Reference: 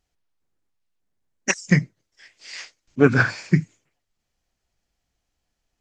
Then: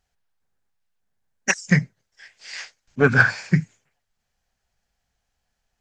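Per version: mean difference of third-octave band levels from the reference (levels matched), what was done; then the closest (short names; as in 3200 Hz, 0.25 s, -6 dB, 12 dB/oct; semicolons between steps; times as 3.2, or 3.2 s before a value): 1.5 dB: thirty-one-band EQ 315 Hz -11 dB, 800 Hz +4 dB, 1600 Hz +6 dB; in parallel at -8.5 dB: soft clip -13.5 dBFS, distortion -10 dB; on the sum: gain -2 dB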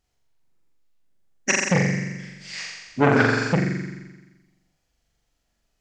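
10.0 dB: on a send: flutter echo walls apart 7.4 m, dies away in 1.2 s; on the sum: core saturation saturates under 960 Hz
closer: first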